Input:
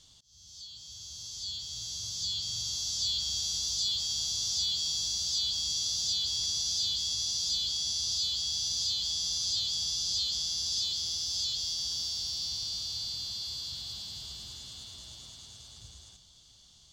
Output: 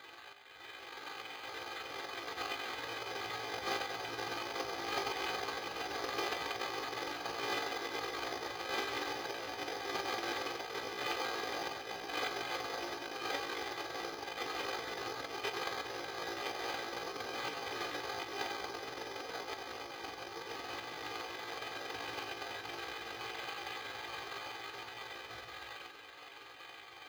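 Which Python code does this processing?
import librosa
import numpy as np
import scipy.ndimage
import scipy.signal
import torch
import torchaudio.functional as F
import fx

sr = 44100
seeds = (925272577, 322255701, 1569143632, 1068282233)

p1 = fx.cvsd(x, sr, bps=16000)
p2 = scipy.signal.sosfilt(scipy.signal.butter(2, 160.0, 'highpass', fs=sr, output='sos'), p1)
p3 = fx.low_shelf(p2, sr, hz=380.0, db=-12.0)
p4 = p3 + 0.81 * np.pad(p3, (int(2.5 * sr / 1000.0), 0))[:len(p3)]
p5 = p4 + fx.room_early_taps(p4, sr, ms=(23, 70), db=(-10.0, -8.5), dry=0)
p6 = fx.stretch_grains(p5, sr, factor=1.6, grain_ms=93.0)
p7 = fx.small_body(p6, sr, hz=(560.0, 2500.0), ring_ms=45, db=8)
p8 = (np.kron(scipy.signal.resample_poly(p7, 1, 8), np.eye(8)[0]) * 8)[:len(p7)]
p9 = fx.air_absorb(p8, sr, metres=280.0)
y = F.gain(torch.from_numpy(p9), 11.0).numpy()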